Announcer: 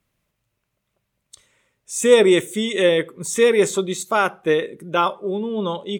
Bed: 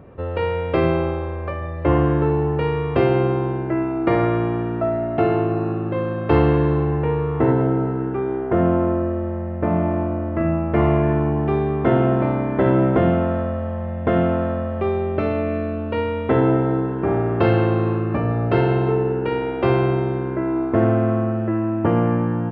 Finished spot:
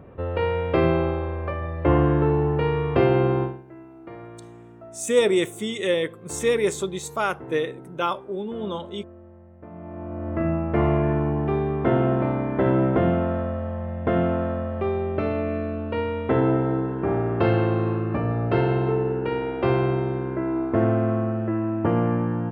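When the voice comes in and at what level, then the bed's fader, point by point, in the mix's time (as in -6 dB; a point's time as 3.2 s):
3.05 s, -6.0 dB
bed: 3.43 s -1.5 dB
3.64 s -22 dB
9.72 s -22 dB
10.31 s -3.5 dB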